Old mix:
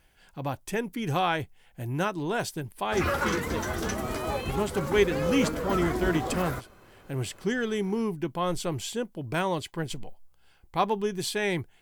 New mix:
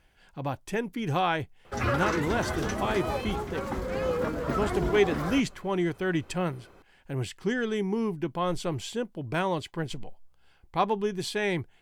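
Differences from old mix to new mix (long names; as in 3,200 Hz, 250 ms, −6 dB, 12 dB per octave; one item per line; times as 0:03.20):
background: entry −1.20 s
master: add high-shelf EQ 7,800 Hz −10.5 dB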